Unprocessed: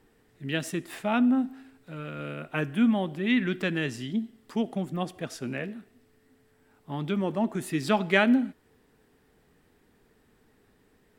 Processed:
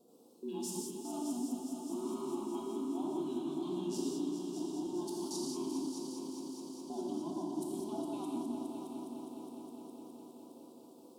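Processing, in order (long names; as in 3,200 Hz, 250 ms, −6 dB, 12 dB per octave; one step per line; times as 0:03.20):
frequency inversion band by band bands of 500 Hz
high-pass filter 210 Hz 24 dB per octave
reversed playback
downward compressor 6 to 1, threshold −38 dBFS, peak gain reduction 19 dB
reversed playback
tape wow and flutter 110 cents
output level in coarse steps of 23 dB
Butterworth band-reject 1,900 Hz, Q 0.53
on a send: echo machine with several playback heads 206 ms, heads all three, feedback 71%, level −11 dB
on the sum: reverb whose tail is shaped and stops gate 220 ms flat, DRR −2.5 dB
level +4 dB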